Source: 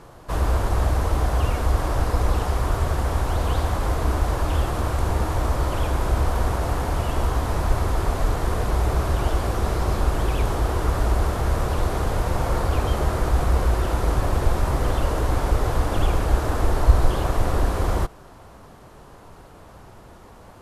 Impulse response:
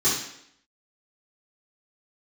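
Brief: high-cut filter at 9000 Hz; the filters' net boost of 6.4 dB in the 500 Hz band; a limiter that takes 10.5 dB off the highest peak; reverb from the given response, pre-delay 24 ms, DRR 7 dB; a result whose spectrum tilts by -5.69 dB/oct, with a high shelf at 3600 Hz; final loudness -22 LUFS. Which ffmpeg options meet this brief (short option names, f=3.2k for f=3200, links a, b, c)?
-filter_complex "[0:a]lowpass=9k,equalizer=f=500:t=o:g=8,highshelf=f=3.6k:g=-5,alimiter=limit=-11.5dB:level=0:latency=1,asplit=2[a][b];[1:a]atrim=start_sample=2205,adelay=24[c];[b][c]afir=irnorm=-1:irlink=0,volume=-21dB[d];[a][d]amix=inputs=2:normalize=0"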